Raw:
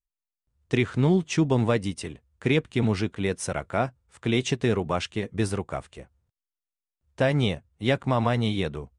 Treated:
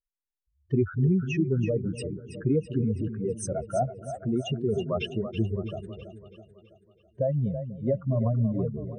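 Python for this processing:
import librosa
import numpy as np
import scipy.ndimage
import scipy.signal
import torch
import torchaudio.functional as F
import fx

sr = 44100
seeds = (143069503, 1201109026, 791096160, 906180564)

y = fx.spec_expand(x, sr, power=3.5)
y = fx.rotary(y, sr, hz=0.75)
y = fx.echo_split(y, sr, split_hz=400.0, low_ms=246, high_ms=328, feedback_pct=52, wet_db=-10.0)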